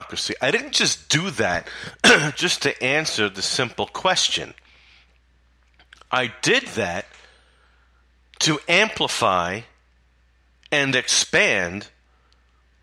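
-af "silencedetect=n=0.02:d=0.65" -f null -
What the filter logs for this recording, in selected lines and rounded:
silence_start: 4.58
silence_end: 5.93 | silence_duration: 1.35
silence_start: 7.25
silence_end: 8.34 | silence_duration: 1.09
silence_start: 9.62
silence_end: 10.66 | silence_duration: 1.04
silence_start: 11.86
silence_end: 12.82 | silence_duration: 0.96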